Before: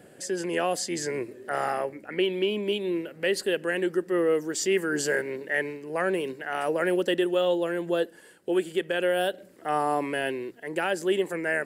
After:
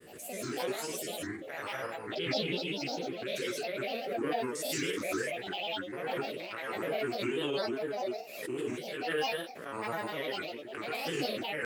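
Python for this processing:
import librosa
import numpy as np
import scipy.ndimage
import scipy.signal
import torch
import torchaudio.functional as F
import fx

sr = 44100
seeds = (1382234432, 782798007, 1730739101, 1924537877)

y = fx.spec_steps(x, sr, hold_ms=100)
y = fx.peak_eq(y, sr, hz=770.0, db=-14.5, octaves=0.52)
y = fx.formant_shift(y, sr, semitones=3)
y = fx.low_shelf(y, sr, hz=340.0, db=-5.0)
y = fx.rev_gated(y, sr, seeds[0], gate_ms=200, shape='rising', drr_db=-3.0)
y = fx.granulator(y, sr, seeds[1], grain_ms=100.0, per_s=20.0, spray_ms=14.0, spread_st=7)
y = fx.pre_swell(y, sr, db_per_s=54.0)
y = y * 10.0 ** (-6.5 / 20.0)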